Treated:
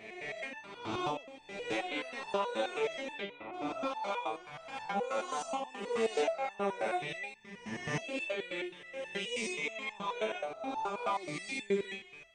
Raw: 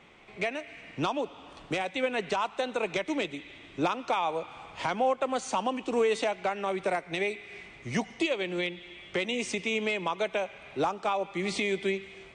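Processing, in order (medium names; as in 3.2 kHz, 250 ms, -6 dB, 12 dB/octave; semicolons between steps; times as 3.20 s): reverse spectral sustain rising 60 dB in 1.44 s; 3.12–3.52 s: low-pass 5.2 kHz -> 2.5 kHz 24 dB/octave; resonator arpeggio 9.4 Hz 110–880 Hz; trim +3 dB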